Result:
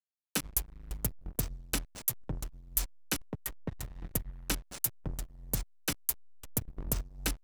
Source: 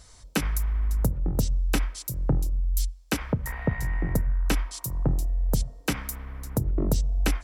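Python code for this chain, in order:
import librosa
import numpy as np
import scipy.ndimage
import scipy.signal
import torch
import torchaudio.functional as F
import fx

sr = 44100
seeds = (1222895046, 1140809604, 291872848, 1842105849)

y = F.preemphasis(torch.from_numpy(x), 0.8).numpy()
y = fx.backlash(y, sr, play_db=-29.5)
y = y * librosa.db_to_amplitude(4.0)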